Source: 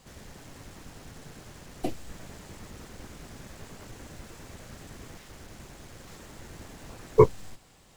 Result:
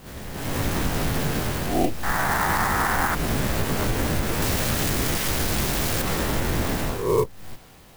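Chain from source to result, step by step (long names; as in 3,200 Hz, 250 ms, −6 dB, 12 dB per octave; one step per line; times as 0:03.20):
peak hold with a rise ahead of every peak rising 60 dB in 0.38 s
0:02.03–0:03.15: flat-topped bell 1,200 Hz +15 dB
automatic gain control gain up to 16 dB
0:04.42–0:06.02: high-shelf EQ 5,000 Hz +11 dB
downward compressor 6 to 1, threshold −26 dBFS, peak gain reduction 16.5 dB
converter with an unsteady clock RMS 0.038 ms
level +7 dB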